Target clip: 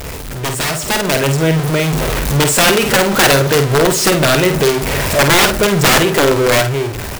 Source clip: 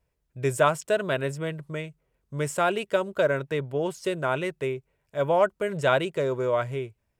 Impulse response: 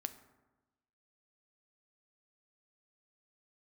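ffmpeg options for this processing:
-filter_complex "[0:a]aeval=exprs='val(0)+0.5*0.0631*sgn(val(0))':channel_layout=same,lowshelf=frequency=66:gain=-4,asplit=2[link_01][link_02];[link_02]adelay=68,lowpass=frequency=2000:poles=1,volume=-19.5dB,asplit=2[link_03][link_04];[link_04]adelay=68,lowpass=frequency=2000:poles=1,volume=0.47,asplit=2[link_05][link_06];[link_06]adelay=68,lowpass=frequency=2000:poles=1,volume=0.47,asplit=2[link_07][link_08];[link_08]adelay=68,lowpass=frequency=2000:poles=1,volume=0.47[link_09];[link_01][link_03][link_05][link_07][link_09]amix=inputs=5:normalize=0,asplit=2[link_10][link_11];[link_11]acompressor=threshold=-31dB:ratio=6,volume=-2dB[link_12];[link_10][link_12]amix=inputs=2:normalize=0,aeval=exprs='(mod(5.62*val(0)+1,2)-1)/5.62':channel_layout=same,asplit=2[link_13][link_14];[1:a]atrim=start_sample=2205,adelay=50[link_15];[link_14][link_15]afir=irnorm=-1:irlink=0,volume=-4.5dB[link_16];[link_13][link_16]amix=inputs=2:normalize=0,dynaudnorm=framelen=200:gausssize=11:maxgain=11.5dB"

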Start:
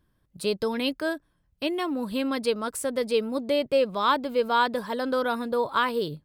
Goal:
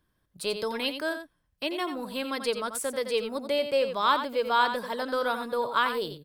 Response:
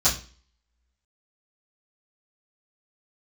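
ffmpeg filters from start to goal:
-filter_complex "[0:a]lowshelf=frequency=450:gain=-6.5,aecho=1:1:88:0.355,acrossover=split=320[link_01][link_02];[link_01]asoftclip=type=tanh:threshold=-39.5dB[link_03];[link_03][link_02]amix=inputs=2:normalize=0"

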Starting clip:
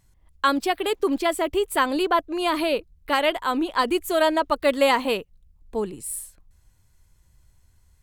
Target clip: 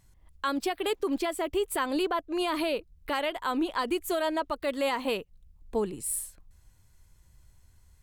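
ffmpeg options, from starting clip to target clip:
ffmpeg -i in.wav -af "alimiter=limit=-19.5dB:level=0:latency=1:release=297" out.wav

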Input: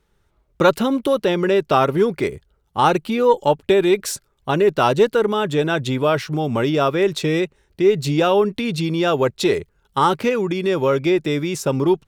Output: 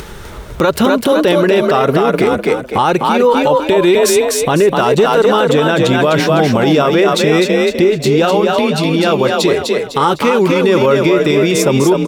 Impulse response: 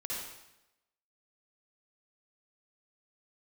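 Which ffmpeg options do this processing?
-filter_complex "[0:a]lowshelf=frequency=140:gain=-4,acompressor=mode=upward:threshold=-21dB:ratio=2.5,asettb=1/sr,asplit=3[link_01][link_02][link_03];[link_01]atrim=end=7.844[link_04];[link_02]atrim=start=7.84:end=10.16,asetpts=PTS-STARTPTS,afade=type=in:duration=0.004:curve=qsin,afade=type=out:start_time=2.316:duration=0.004:curve=qsin,flanger=delay=5.9:depth=8.3:regen=-58:speed=1.8:shape=sinusoidal[link_05];[link_03]atrim=start=10.156[link_06];[link_04][link_05]acrossfade=duration=0.004:curve1=hsin:curve2=qsin[link_07];[link_07][link_06]acrossfade=duration=0.004:curve1=qsin:curve2=hsin,asplit=6[link_08][link_09][link_10][link_11][link_12][link_13];[link_09]adelay=252,afreqshift=38,volume=-4dB[link_14];[link_10]adelay=504,afreqshift=76,volume=-12.6dB[link_15];[link_11]adelay=756,afreqshift=114,volume=-21.3dB[link_16];[link_12]adelay=1008,afreqshift=152,volume=-29.9dB[link_17];[link_13]adelay=1260,afreqshift=190,volume=-38.5dB[link_18];[link_08][link_14][link_15][link_16][link_17][link_18]amix=inputs=6:normalize=0,alimiter=level_in=13dB:limit=-1dB:release=50:level=0:latency=1,volume=-2dB"

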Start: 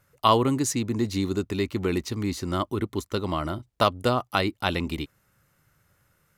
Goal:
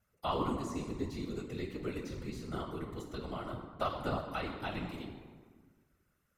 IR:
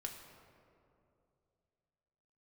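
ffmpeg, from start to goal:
-filter_complex "[1:a]atrim=start_sample=2205,asetrate=79380,aresample=44100[link_01];[0:a][link_01]afir=irnorm=-1:irlink=0,afftfilt=real='hypot(re,im)*cos(2*PI*random(0))':imag='hypot(re,im)*sin(2*PI*random(1))':win_size=512:overlap=0.75,acrossover=split=2900[link_02][link_03];[link_03]acompressor=threshold=-52dB:ratio=4:attack=1:release=60[link_04];[link_02][link_04]amix=inputs=2:normalize=0,volume=1dB"

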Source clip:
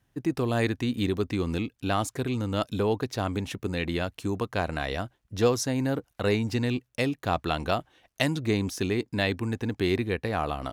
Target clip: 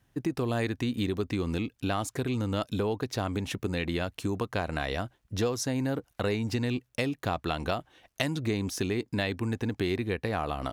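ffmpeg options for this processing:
ffmpeg -i in.wav -af "acompressor=threshold=-30dB:ratio=3,volume=2.5dB" out.wav

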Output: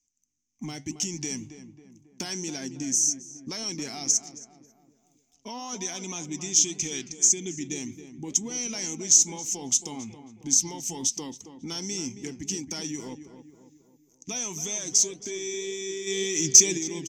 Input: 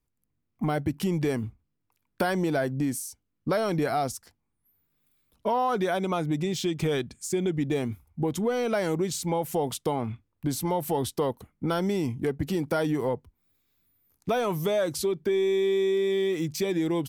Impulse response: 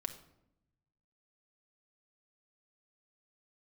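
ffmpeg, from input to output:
-filter_complex "[0:a]firequalizer=gain_entry='entry(140,0);entry(260,9);entry(560,-9);entry(830,1);entry(4200,-15);entry(6200,12);entry(9700,-24)':delay=0.05:min_phase=1,asplit=3[link_01][link_02][link_03];[link_01]afade=type=out:start_time=16.06:duration=0.02[link_04];[link_02]acontrast=75,afade=type=in:start_time=16.06:duration=0.02,afade=type=out:start_time=16.77:duration=0.02[link_05];[link_03]afade=type=in:start_time=16.77:duration=0.02[link_06];[link_04][link_05][link_06]amix=inputs=3:normalize=0,aexciter=amount=13.2:drive=6:freq=2200,flanger=delay=3.7:depth=4.5:regen=83:speed=1.9:shape=sinusoidal,asplit=2[link_07][link_08];[link_08]adelay=272,lowpass=frequency=1700:poles=1,volume=-10dB,asplit=2[link_09][link_10];[link_10]adelay=272,lowpass=frequency=1700:poles=1,volume=0.5,asplit=2[link_11][link_12];[link_12]adelay=272,lowpass=frequency=1700:poles=1,volume=0.5,asplit=2[link_13][link_14];[link_14]adelay=272,lowpass=frequency=1700:poles=1,volume=0.5,asplit=2[link_15][link_16];[link_16]adelay=272,lowpass=frequency=1700:poles=1,volume=0.5[link_17];[link_09][link_11][link_13][link_15][link_17]amix=inputs=5:normalize=0[link_18];[link_07][link_18]amix=inputs=2:normalize=0,volume=-8.5dB"

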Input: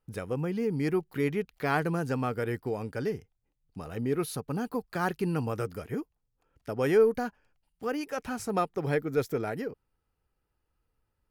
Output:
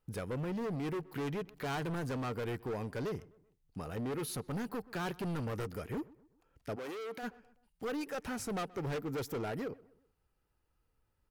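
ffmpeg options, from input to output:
ffmpeg -i in.wav -filter_complex "[0:a]volume=32dB,asoftclip=hard,volume=-32dB,asplit=3[link_01][link_02][link_03];[link_01]afade=type=out:start_time=6.75:duration=0.02[link_04];[link_02]highpass=310,afade=type=in:start_time=6.75:duration=0.02,afade=type=out:start_time=7.22:duration=0.02[link_05];[link_03]afade=type=in:start_time=7.22:duration=0.02[link_06];[link_04][link_05][link_06]amix=inputs=3:normalize=0,asplit=2[link_07][link_08];[link_08]adelay=127,lowpass=frequency=2000:poles=1,volume=-23dB,asplit=2[link_09][link_10];[link_10]adelay=127,lowpass=frequency=2000:poles=1,volume=0.44,asplit=2[link_11][link_12];[link_12]adelay=127,lowpass=frequency=2000:poles=1,volume=0.44[link_13];[link_07][link_09][link_11][link_13]amix=inputs=4:normalize=0,alimiter=level_in=9.5dB:limit=-24dB:level=0:latency=1:release=32,volume=-9.5dB" out.wav

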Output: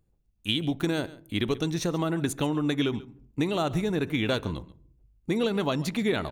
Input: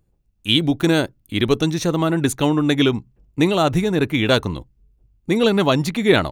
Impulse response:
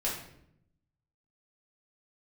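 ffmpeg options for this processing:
-filter_complex "[0:a]acompressor=threshold=-17dB:ratio=6,aecho=1:1:137:0.112,asplit=2[link_01][link_02];[1:a]atrim=start_sample=2205,afade=type=out:start_time=0.44:duration=0.01,atrim=end_sample=19845,highshelf=frequency=2100:gain=-11[link_03];[link_02][link_03]afir=irnorm=-1:irlink=0,volume=-22dB[link_04];[link_01][link_04]amix=inputs=2:normalize=0,volume=-6dB"

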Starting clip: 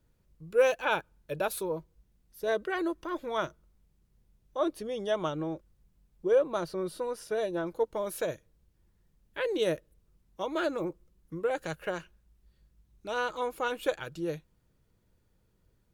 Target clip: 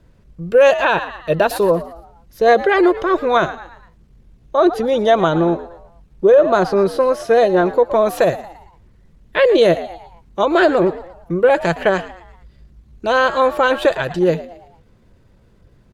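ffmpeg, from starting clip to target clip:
ffmpeg -i in.wav -filter_complex "[0:a]aemphasis=mode=reproduction:type=50fm,asplit=5[link_01][link_02][link_03][link_04][link_05];[link_02]adelay=115,afreqshift=79,volume=-16.5dB[link_06];[link_03]adelay=230,afreqshift=158,volume=-23.8dB[link_07];[link_04]adelay=345,afreqshift=237,volume=-31.2dB[link_08];[link_05]adelay=460,afreqshift=316,volume=-38.5dB[link_09];[link_01][link_06][link_07][link_08][link_09]amix=inputs=5:normalize=0,asetrate=46722,aresample=44100,atempo=0.943874,alimiter=level_in=21dB:limit=-1dB:release=50:level=0:latency=1,volume=-3dB" out.wav

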